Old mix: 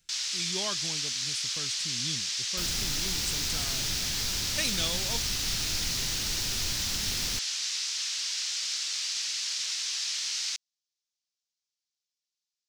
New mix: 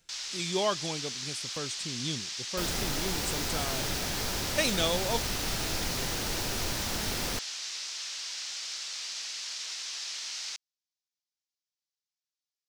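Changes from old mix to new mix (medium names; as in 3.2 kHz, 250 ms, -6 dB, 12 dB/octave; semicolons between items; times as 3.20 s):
first sound -6.5 dB; master: add peaking EQ 600 Hz +10.5 dB 2.5 oct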